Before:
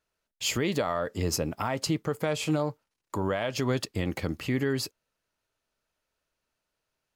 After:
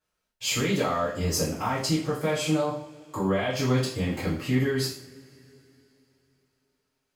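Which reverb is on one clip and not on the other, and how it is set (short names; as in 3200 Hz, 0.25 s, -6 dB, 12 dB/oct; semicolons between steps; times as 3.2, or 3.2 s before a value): two-slope reverb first 0.47 s, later 3.5 s, from -27 dB, DRR -9.5 dB; gain -7.5 dB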